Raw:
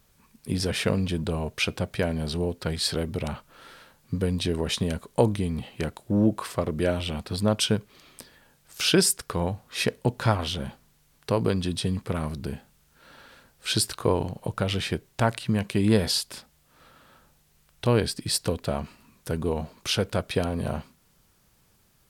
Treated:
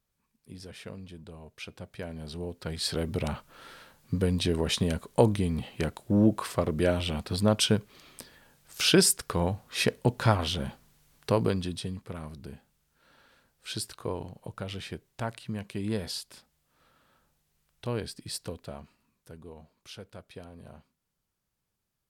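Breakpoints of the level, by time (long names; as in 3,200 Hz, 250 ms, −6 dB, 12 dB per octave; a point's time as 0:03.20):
0:01.39 −18 dB
0:02.62 −7.5 dB
0:03.14 −0.5 dB
0:11.35 −0.5 dB
0:12.01 −10.5 dB
0:18.42 −10.5 dB
0:19.44 −19.5 dB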